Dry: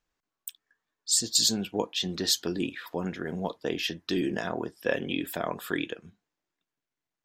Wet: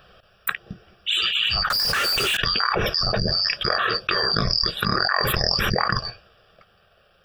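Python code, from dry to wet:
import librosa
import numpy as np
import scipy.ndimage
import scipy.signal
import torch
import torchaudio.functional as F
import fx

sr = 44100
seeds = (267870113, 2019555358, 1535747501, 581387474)

y = fx.band_shuffle(x, sr, order='2341')
y = scipy.signal.savgol_filter(y, 25, 4, mode='constant')
y = fx.fixed_phaser(y, sr, hz=1400.0, stages=8)
y = fx.power_curve(y, sr, exponent=0.35, at=(1.7, 2.37))
y = fx.env_flatten(y, sr, amount_pct=100)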